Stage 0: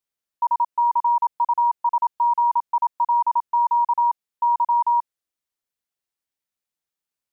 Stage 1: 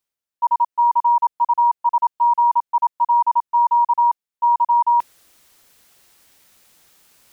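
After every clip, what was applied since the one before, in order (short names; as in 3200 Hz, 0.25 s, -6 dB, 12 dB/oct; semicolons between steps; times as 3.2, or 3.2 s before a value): gate -22 dBFS, range -6 dB; reverse; upward compressor, threshold -31 dBFS; reverse; gain +3.5 dB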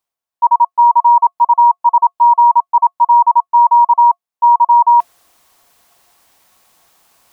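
bell 880 Hz +7.5 dB 1 oct; small resonant body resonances 700/1100 Hz, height 9 dB, ringing for 85 ms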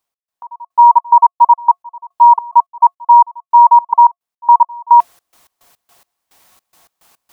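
step gate "x.x..xx.x." 107 bpm -24 dB; gain +3 dB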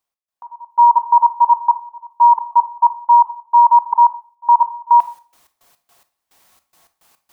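reverb RT60 0.40 s, pre-delay 26 ms, DRR 11.5 dB; gain -4 dB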